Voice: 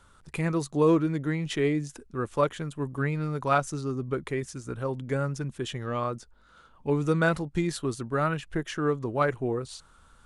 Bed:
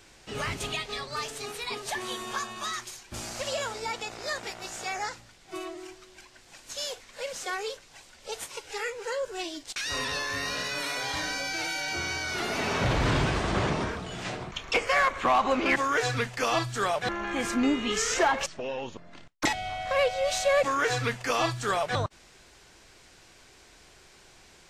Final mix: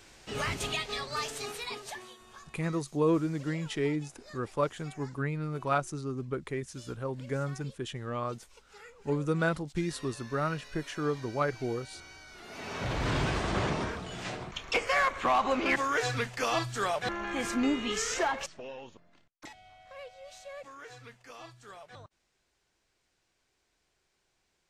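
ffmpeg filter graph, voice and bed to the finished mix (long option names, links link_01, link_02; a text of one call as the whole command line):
ffmpeg -i stem1.wav -i stem2.wav -filter_complex "[0:a]adelay=2200,volume=-4.5dB[link_01];[1:a]volume=15.5dB,afade=type=out:start_time=1.41:duration=0.74:silence=0.11885,afade=type=in:start_time=12.42:duration=0.89:silence=0.158489,afade=type=out:start_time=17.78:duration=1.59:silence=0.11885[link_02];[link_01][link_02]amix=inputs=2:normalize=0" out.wav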